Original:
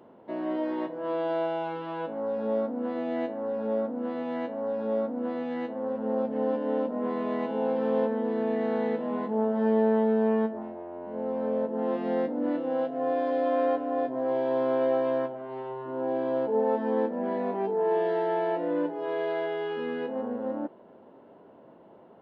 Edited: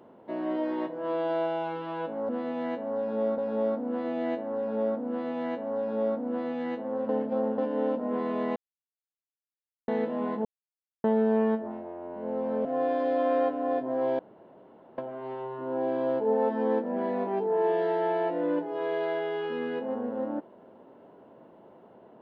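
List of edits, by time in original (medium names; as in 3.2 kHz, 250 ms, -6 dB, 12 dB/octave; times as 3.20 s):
4.00–5.09 s: copy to 2.29 s
6.00–6.49 s: reverse
7.47–8.79 s: mute
9.36–9.95 s: mute
11.56–12.92 s: delete
14.46–15.25 s: room tone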